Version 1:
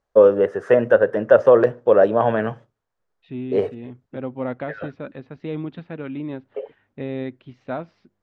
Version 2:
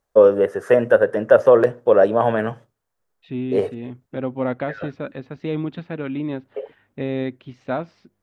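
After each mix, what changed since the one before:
second voice +3.5 dB
master: remove high-frequency loss of the air 91 metres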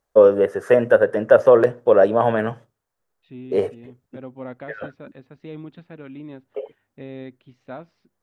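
second voice −11.0 dB

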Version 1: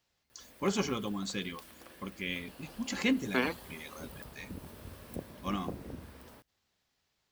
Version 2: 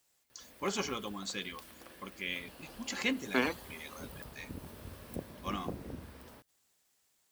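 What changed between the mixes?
first voice: add low-shelf EQ 290 Hz −11.5 dB
second voice: remove low-pass filter 5,300 Hz 24 dB per octave

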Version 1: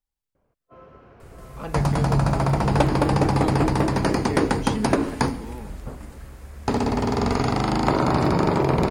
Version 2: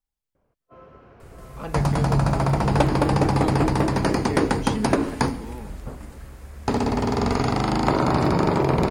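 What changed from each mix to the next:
nothing changed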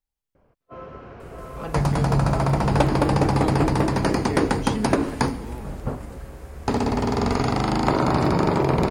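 first sound +8.5 dB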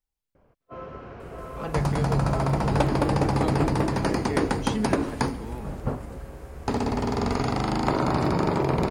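second sound −3.5 dB

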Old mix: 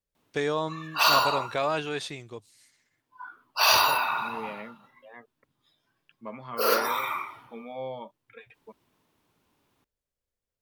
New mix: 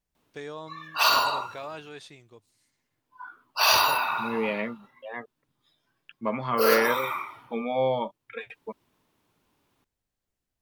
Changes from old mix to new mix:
first voice −11.0 dB
second voice +11.0 dB

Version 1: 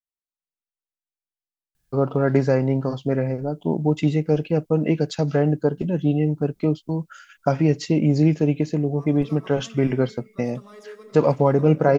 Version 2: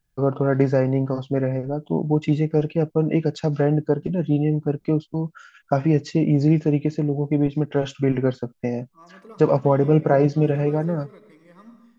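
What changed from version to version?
first voice: entry −1.75 s
master: add high-shelf EQ 3,700 Hz −7 dB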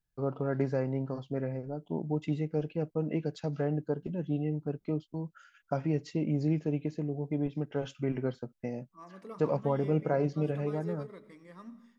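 first voice −11.5 dB
second voice: send −9.0 dB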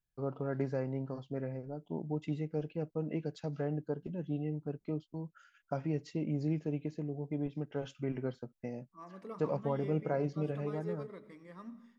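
first voice −4.5 dB
second voice: add high-shelf EQ 4,800 Hz −6.5 dB

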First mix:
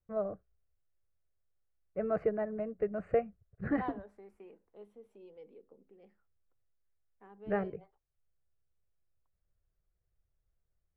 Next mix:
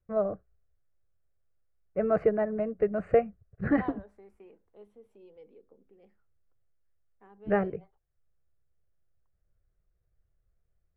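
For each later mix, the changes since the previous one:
first voice +6.5 dB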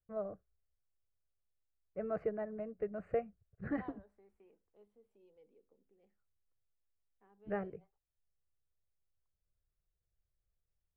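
first voice −12.0 dB
second voice −12.0 dB

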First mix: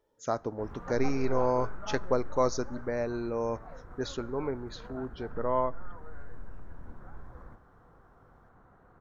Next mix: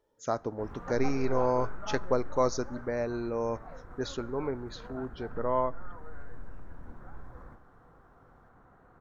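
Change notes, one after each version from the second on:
background: send +10.5 dB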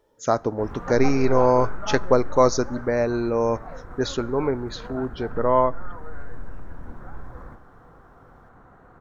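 speech +9.5 dB
background +8.0 dB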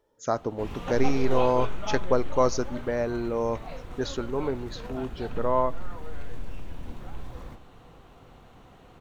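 speech −5.5 dB
background: add high shelf with overshoot 2,100 Hz +11 dB, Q 3

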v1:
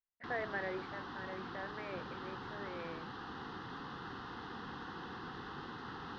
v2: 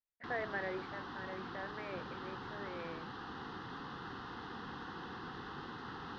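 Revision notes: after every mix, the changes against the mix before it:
nothing changed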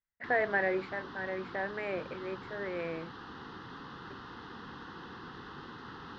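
speech +10.0 dB
background: add parametric band 760 Hz −5.5 dB 0.25 octaves

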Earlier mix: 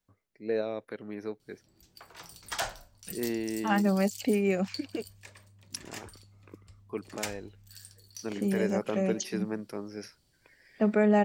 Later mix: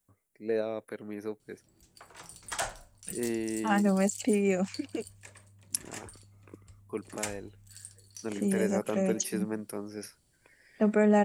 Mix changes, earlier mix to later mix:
background: add high-frequency loss of the air 59 metres
master: add high shelf with overshoot 6,600 Hz +10.5 dB, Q 1.5

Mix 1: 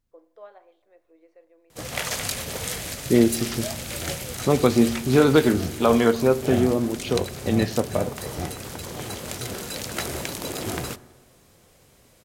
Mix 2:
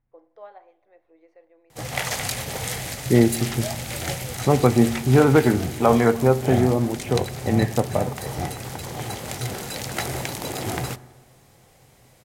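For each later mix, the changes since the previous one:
second voice: add low-pass filter 2,300 Hz 24 dB per octave
master: add thirty-one-band graphic EQ 125 Hz +9 dB, 800 Hz +8 dB, 2,000 Hz +4 dB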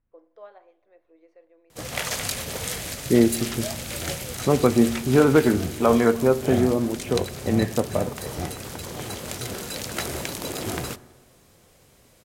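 master: add thirty-one-band graphic EQ 125 Hz −9 dB, 800 Hz −8 dB, 2,000 Hz −4 dB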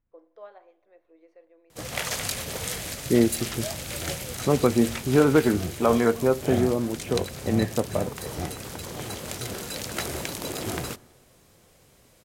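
second voice: send −11.0 dB
background: send −6.0 dB

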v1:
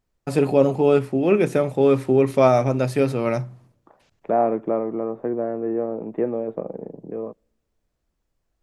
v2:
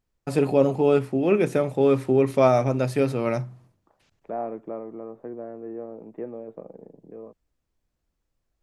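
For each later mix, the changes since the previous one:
second voice −9.0 dB
reverb: off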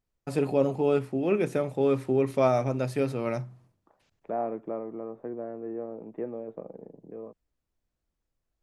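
first voice −5.0 dB

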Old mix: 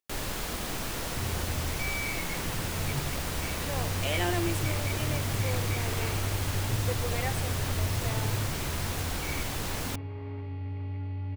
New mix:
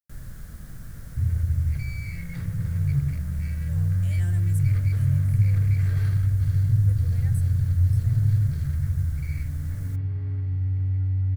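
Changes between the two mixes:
first sound: add low-pass filter 1,800 Hz 6 dB per octave
second sound +11.0 dB
master: add drawn EQ curve 150 Hz 0 dB, 360 Hz −20 dB, 600 Hz −18 dB, 880 Hz −25 dB, 1,600 Hz −9 dB, 2,600 Hz −22 dB, 9,700 Hz 0 dB, 14,000 Hz +3 dB

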